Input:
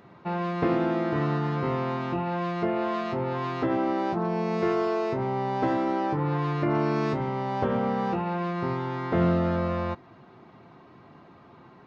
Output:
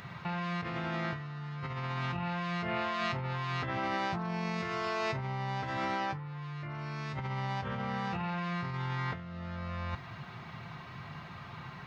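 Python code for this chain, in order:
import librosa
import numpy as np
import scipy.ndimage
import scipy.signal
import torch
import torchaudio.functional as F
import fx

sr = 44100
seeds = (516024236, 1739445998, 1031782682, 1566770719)

y = fx.curve_eq(x, sr, hz=(150.0, 300.0, 2000.0), db=(0, -18, 2))
y = fx.over_compress(y, sr, threshold_db=-40.0, ratio=-1.0)
y = y * 10.0 ** (4.0 / 20.0)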